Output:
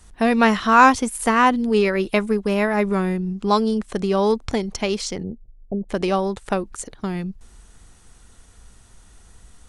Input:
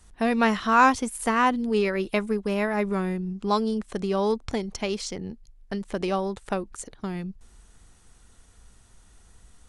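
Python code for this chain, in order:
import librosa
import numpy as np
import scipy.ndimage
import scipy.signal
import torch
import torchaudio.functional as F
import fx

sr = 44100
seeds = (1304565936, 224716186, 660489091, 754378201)

y = fx.steep_lowpass(x, sr, hz=710.0, slope=48, at=(5.22, 5.89), fade=0.02)
y = y * 10.0 ** (5.5 / 20.0)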